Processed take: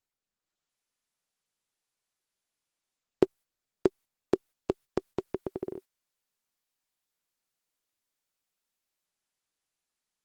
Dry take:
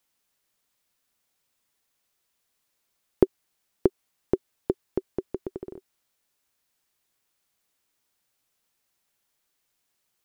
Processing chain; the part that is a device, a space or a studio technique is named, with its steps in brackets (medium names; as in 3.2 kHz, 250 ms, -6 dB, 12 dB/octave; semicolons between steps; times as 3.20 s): 4.35–5.57 s: dynamic bell 360 Hz, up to -4 dB, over -38 dBFS, Q 1; video call (high-pass 110 Hz 6 dB/octave; level rider gain up to 9.5 dB; gate -40 dBFS, range -13 dB; trim -6 dB; Opus 20 kbps 48 kHz)